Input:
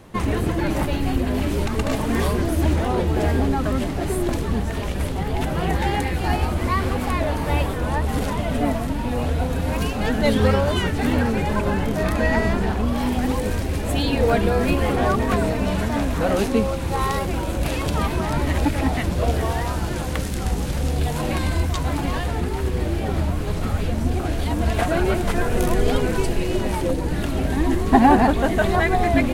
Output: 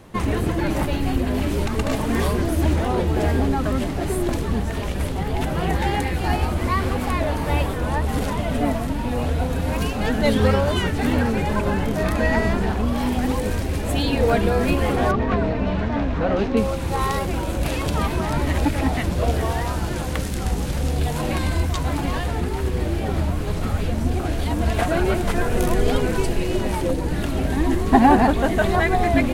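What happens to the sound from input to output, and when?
0:15.11–0:16.57: high-frequency loss of the air 210 metres

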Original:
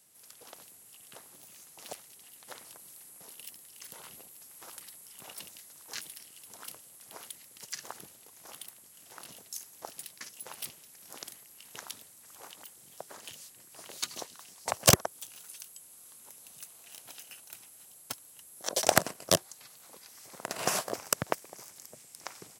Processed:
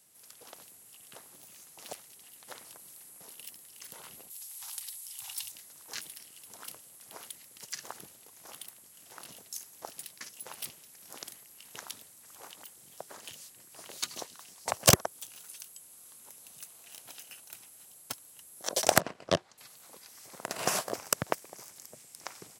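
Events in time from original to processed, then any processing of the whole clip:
0:04.30–0:05.52: drawn EQ curve 110 Hz 0 dB, 230 Hz −28 dB, 530 Hz −25 dB, 810 Hz −1 dB, 1,300 Hz −5 dB, 3,800 Hz +7 dB
0:19.00–0:19.58: low-pass filter 3,300 Hz

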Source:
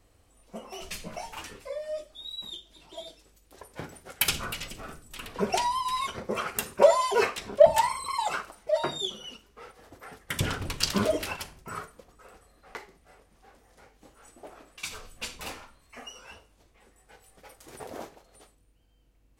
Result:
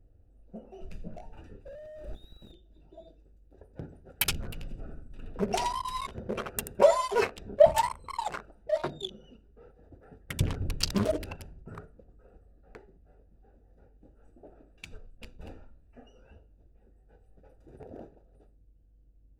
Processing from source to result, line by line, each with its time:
0:01.66–0:02.52: sign of each sample alone
0:04.48–0:06.78: repeating echo 82 ms, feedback 25%, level −8 dB
0:14.97–0:15.39: mu-law and A-law mismatch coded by A
whole clip: adaptive Wiener filter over 41 samples; low-shelf EQ 100 Hz +9.5 dB; level −2 dB

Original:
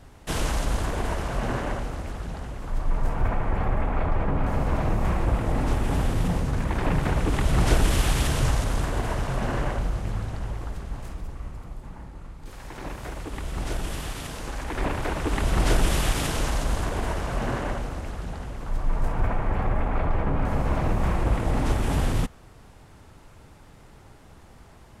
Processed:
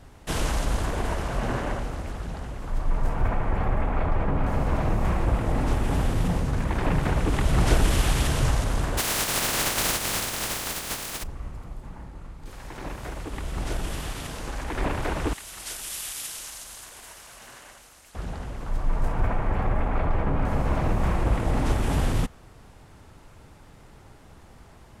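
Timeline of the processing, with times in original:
0:08.97–0:11.22: compressing power law on the bin magnitudes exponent 0.21
0:15.33–0:18.15: first-order pre-emphasis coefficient 0.97

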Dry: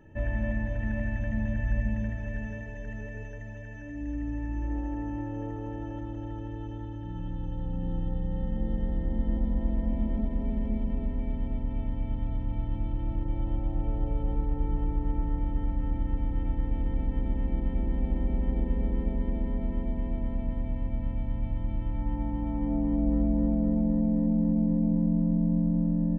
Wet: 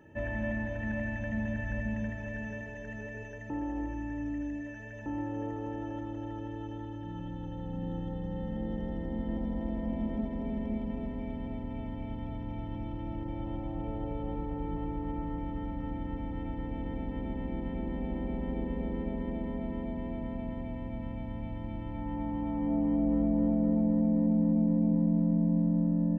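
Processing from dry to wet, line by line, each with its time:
0:03.50–0:05.06: reverse
whole clip: high-pass filter 190 Hz 6 dB per octave; level +1.5 dB

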